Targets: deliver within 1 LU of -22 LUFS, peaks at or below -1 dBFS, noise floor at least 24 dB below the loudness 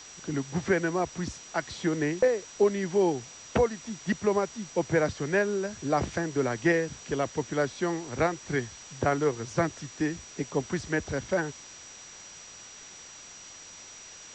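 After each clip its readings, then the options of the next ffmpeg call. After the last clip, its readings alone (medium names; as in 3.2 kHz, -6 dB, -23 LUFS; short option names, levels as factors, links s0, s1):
steady tone 5.8 kHz; tone level -47 dBFS; noise floor -47 dBFS; noise floor target -53 dBFS; loudness -29.0 LUFS; peak level -13.0 dBFS; loudness target -22.0 LUFS
-> -af "bandreject=f=5800:w=30"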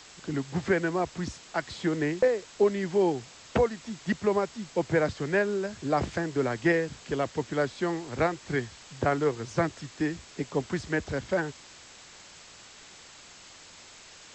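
steady tone not found; noise floor -51 dBFS; noise floor target -53 dBFS
-> -af "afftdn=nr=6:nf=-51"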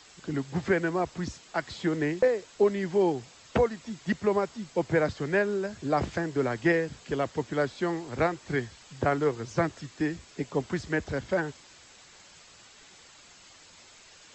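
noise floor -54 dBFS; loudness -29.0 LUFS; peak level -13.0 dBFS; loudness target -22.0 LUFS
-> -af "volume=2.24"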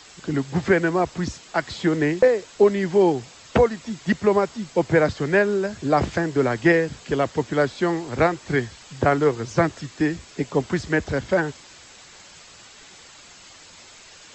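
loudness -22.0 LUFS; peak level -6.0 dBFS; noise floor -47 dBFS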